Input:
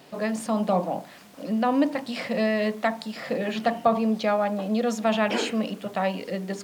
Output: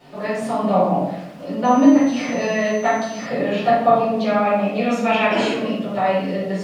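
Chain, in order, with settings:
0:04.41–0:05.23: parametric band 2,400 Hz +14.5 dB 0.25 octaves
rectangular room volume 240 cubic metres, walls mixed, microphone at 4.4 metres
0:01.64–0:03.25: steady tone 6,100 Hz −29 dBFS
high-shelf EQ 5,400 Hz −10 dB
level −5.5 dB

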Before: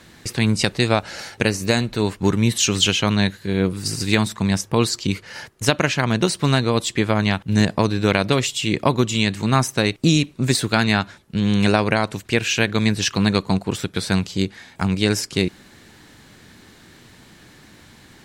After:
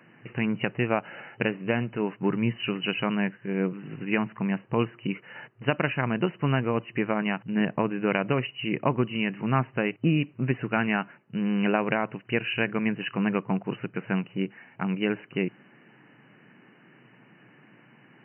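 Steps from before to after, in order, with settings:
brick-wall band-pass 110–3,000 Hz
level −6.5 dB

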